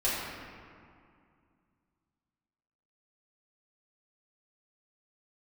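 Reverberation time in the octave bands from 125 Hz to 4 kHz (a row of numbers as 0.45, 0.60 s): 2.9, 2.9, 2.2, 2.3, 1.9, 1.3 s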